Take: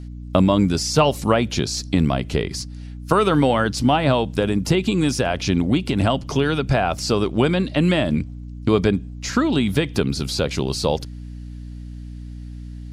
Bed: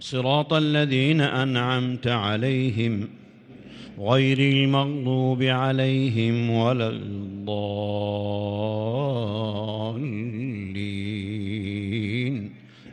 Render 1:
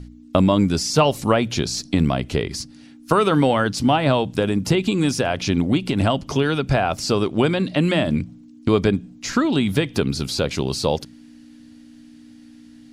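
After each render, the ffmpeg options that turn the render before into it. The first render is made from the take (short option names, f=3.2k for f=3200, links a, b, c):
-af "bandreject=f=60:t=h:w=4,bandreject=f=120:t=h:w=4,bandreject=f=180:t=h:w=4"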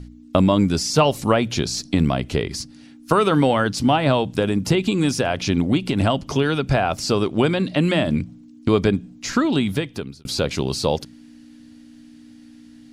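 -filter_complex "[0:a]asplit=2[a][b];[a]atrim=end=10.25,asetpts=PTS-STARTPTS,afade=t=out:st=9.56:d=0.69[c];[b]atrim=start=10.25,asetpts=PTS-STARTPTS,afade=t=in:d=0.004:c=hsin[d];[c][d]concat=n=2:v=0:a=1"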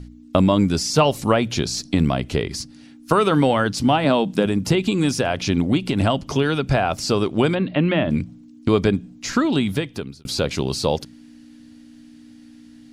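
-filter_complex "[0:a]asettb=1/sr,asplit=3[a][b][c];[a]atrim=end=4.044[d];[b]atrim=start=4.04:end=4.46,asetpts=PTS-STARTPTS,afade=t=in:d=0.004:c=qsin,afade=t=out:st=0.416:d=0.004:c=qsin,lowshelf=f=140:t=q:w=3:g=-8.5[e];[c]atrim=start=4.456[f];[d][e]acrossfade=d=0.004:c1=hsin:c2=qsin[g];[g][f]acrossfade=d=0.004:c1=qsin:c2=hsin,asplit=3[h][i][j];[h]afade=t=out:st=7.54:d=0.02[k];[i]lowpass=f=3.1k:w=0.5412,lowpass=f=3.1k:w=1.3066,afade=t=in:st=7.54:d=0.02,afade=t=out:st=8.09:d=0.02[l];[j]afade=t=in:st=8.09:d=0.02[m];[k][l][m]amix=inputs=3:normalize=0"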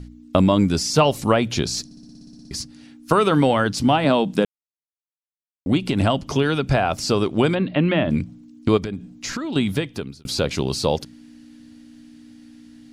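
-filter_complex "[0:a]asettb=1/sr,asplit=3[a][b][c];[a]atrim=end=8.774[d];[b]atrim=start=8.77:end=9.56,asetpts=PTS-STARTPTS,afade=t=in:d=0.004:c=qsin,afade=t=out:st=0.786:d=0.004:c=qsin,acompressor=threshold=-24dB:ratio=6:attack=3.2:release=140:knee=1:detection=peak[e];[c]atrim=start=9.556[f];[d][e]acrossfade=d=0.004:c1=hsin:c2=qsin[g];[g][f]acrossfade=d=0.004:c1=qsin:c2=hsin,asplit=14[h][i][j][k][l][m][n][o][p][q][r][s][t][u];[h]atrim=end=1.912[v];[i]atrim=start=1.848:end=1.912[w];[j]atrim=start=1.848:end=1.912[x];[k]atrim=start=1.848:end=1.912[y];[l]atrim=start=1.848:end=1.912[z];[m]atrim=start=1.848:end=1.912[aa];[n]atrim=start=1.848:end=1.912[ab];[o]atrim=start=1.848:end=1.912[ac];[p]atrim=start=1.848:end=1.912[ad];[q]atrim=start=1.848:end=1.912[ae];[r]atrim=start=1.848:end=1.912[af];[s]atrim=start=2.508:end=4.45,asetpts=PTS-STARTPTS,afade=t=out:st=1.938:d=0.004:c=hsin[ag];[t]atrim=start=4.45:end=5.66,asetpts=PTS-STARTPTS,volume=0[ah];[u]atrim=start=5.66,asetpts=PTS-STARTPTS,afade=t=in:d=0.004:c=hsin[ai];[v][w]acrossfade=d=0.004:c1=hsin:c2=hsin[aj];[aj][x]acrossfade=d=0.004:c1=hsin:c2=hsin[ak];[ak][y]acrossfade=d=0.004:c1=hsin:c2=hsin[al];[al][z]acrossfade=d=0.004:c1=hsin:c2=hsin[am];[am][aa]acrossfade=d=0.004:c1=hsin:c2=hsin[an];[an][ab]acrossfade=d=0.004:c1=hsin:c2=hsin[ao];[ao][ac]acrossfade=d=0.004:c1=hsin:c2=hsin[ap];[ap][ad]acrossfade=d=0.004:c1=hsin:c2=hsin[aq];[aq][ae]acrossfade=d=0.004:c1=hsin:c2=hsin[ar];[ar][af]acrossfade=d=0.004:c1=hsin:c2=hsin[as];[ag][ah][ai]concat=n=3:v=0:a=1[at];[as][at]acrossfade=d=0.004:c1=hsin:c2=hsin"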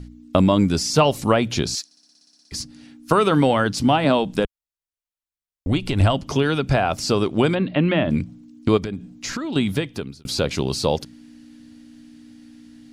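-filter_complex "[0:a]asettb=1/sr,asplit=3[a][b][c];[a]atrim=end=1.754[d];[b]atrim=start=1.75:end=2.52,asetpts=PTS-STARTPTS,afade=t=in:d=0.004:c=qsin,afade=t=out:st=0.766:d=0.004:c=qsin,highpass=1.2k[e];[c]atrim=start=2.516[f];[d][e]acrossfade=d=0.004:c1=hsin:c2=qsin[g];[g][f]acrossfade=d=0.004:c1=qsin:c2=hsin,asplit=3[h][i][j];[h]afade=t=out:st=4.17:d=0.02[k];[i]asubboost=boost=8:cutoff=68,afade=t=in:st=4.17:d=0.02,afade=t=out:st=6.13:d=0.02[l];[j]afade=t=in:st=6.13:d=0.02[m];[k][l][m]amix=inputs=3:normalize=0"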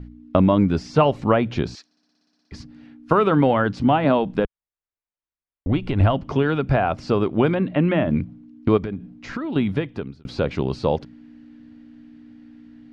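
-af "lowpass=2.1k"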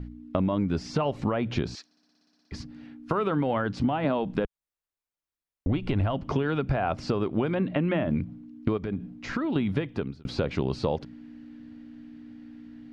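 -af "alimiter=limit=-10dB:level=0:latency=1:release=236,acompressor=threshold=-22dB:ratio=6"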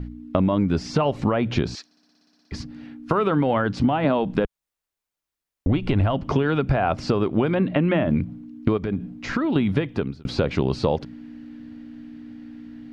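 -af "volume=5.5dB"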